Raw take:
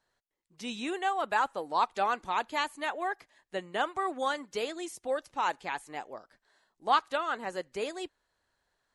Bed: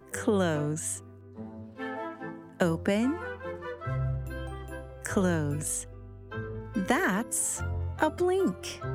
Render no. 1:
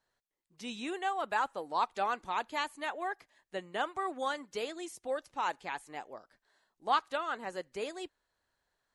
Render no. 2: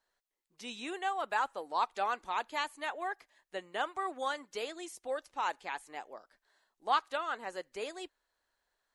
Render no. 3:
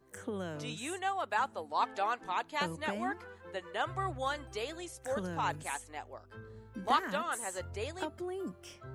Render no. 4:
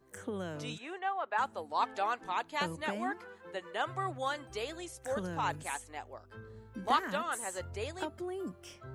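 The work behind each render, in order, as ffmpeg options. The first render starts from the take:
ffmpeg -i in.wav -af "volume=-3.5dB" out.wav
ffmpeg -i in.wav -af "equalizer=frequency=120:width=0.7:gain=-11.5" out.wav
ffmpeg -i in.wav -i bed.wav -filter_complex "[1:a]volume=-13dB[link_01];[0:a][link_01]amix=inputs=2:normalize=0" out.wav
ffmpeg -i in.wav -filter_complex "[0:a]asplit=3[link_01][link_02][link_03];[link_01]afade=type=out:start_time=0.77:duration=0.02[link_04];[link_02]highpass=380,lowpass=2300,afade=type=in:start_time=0.77:duration=0.02,afade=type=out:start_time=1.37:duration=0.02[link_05];[link_03]afade=type=in:start_time=1.37:duration=0.02[link_06];[link_04][link_05][link_06]amix=inputs=3:normalize=0,asettb=1/sr,asplit=3[link_07][link_08][link_09];[link_07]atrim=end=2.814[link_10];[link_08]atrim=start=2.81:end=4.5,asetpts=PTS-STARTPTS,afade=type=in:duration=0.004:curve=qsin,afade=type=out:start_time=1.686:duration=0.004:curve=qsin,highpass=frequency=120:width=0.5412,highpass=frequency=120:width=1.3066[link_11];[link_09]atrim=start=4.496[link_12];[link_10][link_11]acrossfade=duration=0.004:curve1=hsin:curve2=qsin[link_13];[link_13][link_12]acrossfade=duration=0.004:curve1=qsin:curve2=hsin" out.wav

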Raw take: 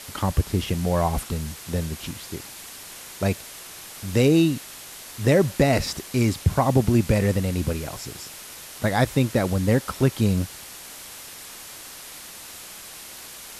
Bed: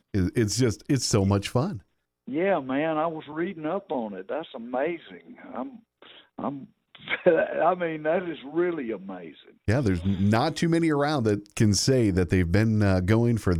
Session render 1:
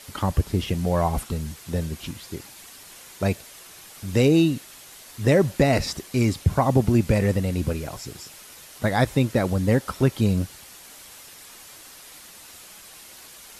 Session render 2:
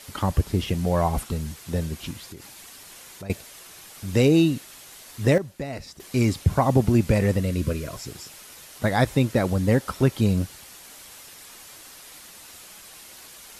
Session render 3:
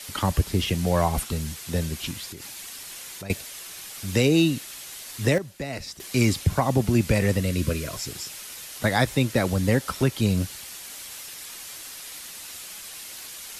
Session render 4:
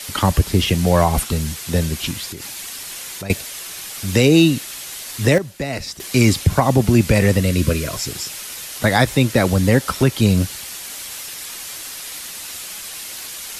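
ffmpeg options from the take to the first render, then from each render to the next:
ffmpeg -i in.wav -af "afftdn=noise_reduction=6:noise_floor=-41" out.wav
ffmpeg -i in.wav -filter_complex "[0:a]asettb=1/sr,asplit=3[link_01][link_02][link_03];[link_01]atrim=end=2.214[link_04];[link_02]atrim=start=2.21:end=3.3,asetpts=PTS-STARTPTS,afade=type=in:duration=0.004:curve=qsin,afade=type=out:start_time=1.086:duration=0.004:curve=qsin,acompressor=threshold=-36dB:ratio=6:attack=3.2:release=140:knee=1:detection=peak[link_05];[link_03]atrim=start=3.296[link_06];[link_04][link_05]acrossfade=duration=0.004:curve1=hsin:curve2=qsin[link_07];[link_07][link_06]acrossfade=duration=0.004:curve1=qsin:curve2=hsin,asettb=1/sr,asplit=3[link_08][link_09][link_10];[link_08]atrim=end=7.394[link_11];[link_09]atrim=start=7.39:end=7.96,asetpts=PTS-STARTPTS,afade=type=in:duration=0.004:curve=qsin,afade=type=out:start_time=0.566:duration=0.004:curve=qsin,asuperstop=centerf=810:order=12:qfactor=3.4[link_12];[link_10]atrim=start=7.956[link_13];[link_11][link_12]acrossfade=duration=0.004:curve1=hsin:curve2=qsin[link_14];[link_14][link_13]acrossfade=duration=0.004:curve1=qsin:curve2=hsin,asplit=3[link_15][link_16][link_17];[link_15]atrim=end=5.38,asetpts=PTS-STARTPTS,afade=type=out:start_time=5.25:duration=0.13:curve=log:silence=0.211349[link_18];[link_16]atrim=start=5.38:end=6,asetpts=PTS-STARTPTS,volume=-13.5dB[link_19];[link_17]atrim=start=6,asetpts=PTS-STARTPTS,afade=type=in:duration=0.13:curve=log:silence=0.211349[link_20];[link_18][link_19][link_20]concat=n=3:v=0:a=1" out.wav
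ffmpeg -i in.wav -filter_complex "[0:a]acrossover=split=170|450|1700[link_01][link_02][link_03][link_04];[link_04]acontrast=55[link_05];[link_01][link_02][link_03][link_05]amix=inputs=4:normalize=0,alimiter=limit=-9dB:level=0:latency=1:release=483" out.wav
ffmpeg -i in.wav -af "volume=7.5dB,alimiter=limit=-3dB:level=0:latency=1" out.wav

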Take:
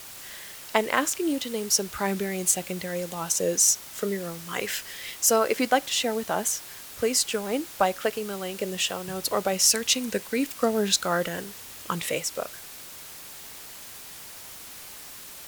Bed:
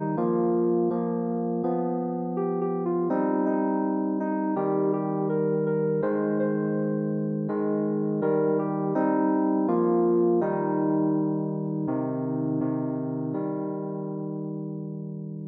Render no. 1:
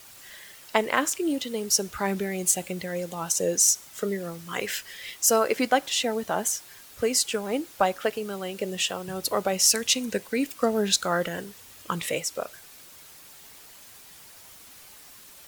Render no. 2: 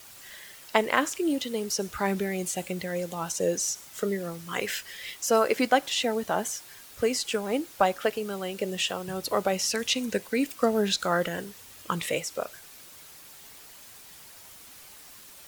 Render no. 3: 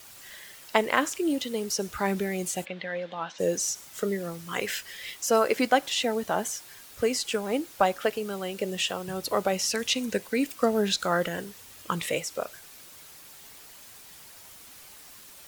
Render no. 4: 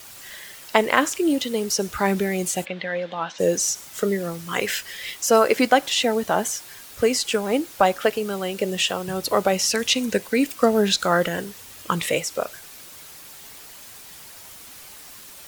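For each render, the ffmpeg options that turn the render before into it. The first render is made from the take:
ffmpeg -i in.wav -af "afftdn=noise_reduction=7:noise_floor=-43" out.wav
ffmpeg -i in.wav -filter_complex "[0:a]acrossover=split=4300[link_01][link_02];[link_02]acompressor=threshold=-31dB:ratio=4:attack=1:release=60[link_03];[link_01][link_03]amix=inputs=2:normalize=0" out.wav
ffmpeg -i in.wav -filter_complex "[0:a]asplit=3[link_01][link_02][link_03];[link_01]afade=type=out:start_time=2.64:duration=0.02[link_04];[link_02]highpass=260,equalizer=frequency=380:width_type=q:width=4:gain=-9,equalizer=frequency=1700:width_type=q:width=4:gain=5,equalizer=frequency=3500:width_type=q:width=4:gain=5,lowpass=frequency=3700:width=0.5412,lowpass=frequency=3700:width=1.3066,afade=type=in:start_time=2.64:duration=0.02,afade=type=out:start_time=3.38:duration=0.02[link_05];[link_03]afade=type=in:start_time=3.38:duration=0.02[link_06];[link_04][link_05][link_06]amix=inputs=3:normalize=0" out.wav
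ffmpeg -i in.wav -af "volume=6dB,alimiter=limit=-3dB:level=0:latency=1" out.wav

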